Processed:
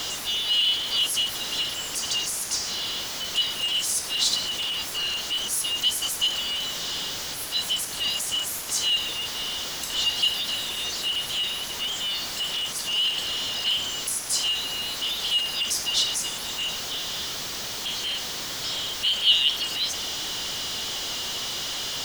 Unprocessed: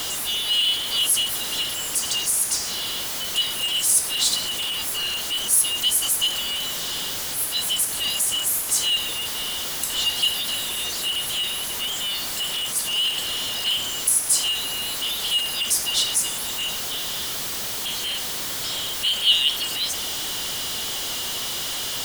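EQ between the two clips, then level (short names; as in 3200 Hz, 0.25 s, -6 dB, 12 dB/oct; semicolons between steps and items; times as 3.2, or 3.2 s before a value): resonant high shelf 7500 Hz -6.5 dB, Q 1.5; -2.0 dB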